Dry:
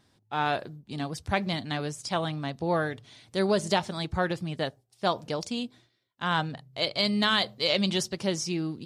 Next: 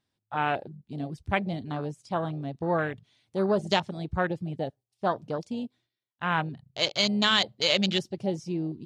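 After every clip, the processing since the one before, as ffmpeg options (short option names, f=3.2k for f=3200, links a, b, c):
-af "equalizer=f=2.8k:w=1.4:g=4,afwtdn=0.0282"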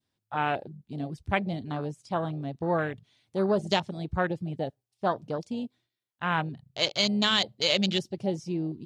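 -af "adynamicequalizer=threshold=0.0112:dfrequency=1400:dqfactor=0.78:tfrequency=1400:tqfactor=0.78:attack=5:release=100:ratio=0.375:range=2.5:mode=cutabove:tftype=bell"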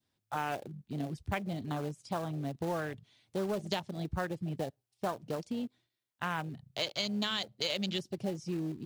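-filter_complex "[0:a]acrossover=split=390|930[a][b][c];[b]acrusher=bits=2:mode=log:mix=0:aa=0.000001[d];[a][d][c]amix=inputs=3:normalize=0,acompressor=threshold=-33dB:ratio=3"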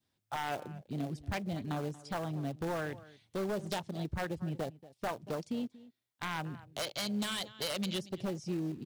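-filter_complex "[0:a]asplit=2[a][b];[b]adelay=233.2,volume=-19dB,highshelf=f=4k:g=-5.25[c];[a][c]amix=inputs=2:normalize=0,aeval=exprs='0.0398*(abs(mod(val(0)/0.0398+3,4)-2)-1)':c=same"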